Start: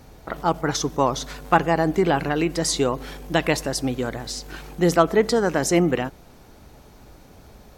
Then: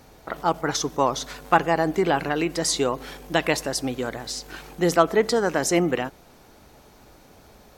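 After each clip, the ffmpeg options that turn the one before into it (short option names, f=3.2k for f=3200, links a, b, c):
-af "lowshelf=f=210:g=-8"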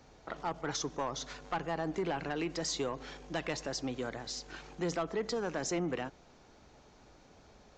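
-filter_complex "[0:a]acrossover=split=180[a][b];[b]acompressor=threshold=-23dB:ratio=2[c];[a][c]amix=inputs=2:normalize=0,aresample=16000,asoftclip=type=tanh:threshold=-18dB,aresample=44100,volume=-8dB"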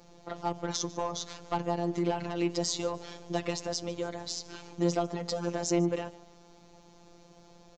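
-filter_complex "[0:a]equalizer=f=1.7k:t=o:w=1.2:g=-8,asplit=4[a][b][c][d];[b]adelay=148,afreqshift=85,volume=-21.5dB[e];[c]adelay=296,afreqshift=170,volume=-30.1dB[f];[d]adelay=444,afreqshift=255,volume=-38.8dB[g];[a][e][f][g]amix=inputs=4:normalize=0,afftfilt=real='hypot(re,im)*cos(PI*b)':imag='0':win_size=1024:overlap=0.75,volume=8dB"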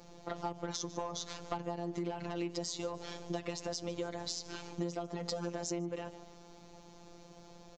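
-af "acompressor=threshold=-34dB:ratio=10,volume=1dB"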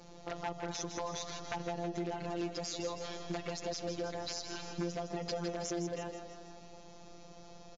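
-af "aeval=exprs='0.0398*(abs(mod(val(0)/0.0398+3,4)-2)-1)':c=same,aecho=1:1:161|322|483|644|805|966|1127:0.398|0.231|0.134|0.0777|0.0451|0.0261|0.0152,volume=1dB" -ar 16000 -c:a mp2 -b:a 128k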